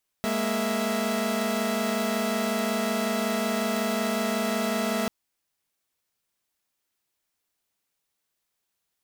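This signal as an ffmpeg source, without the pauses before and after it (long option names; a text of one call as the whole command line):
ffmpeg -f lavfi -i "aevalsrc='0.0473*((2*mod(207.65*t,1)-1)+(2*mod(233.08*t,1)-1)+(2*mod(659.26*t,1)-1))':duration=4.84:sample_rate=44100" out.wav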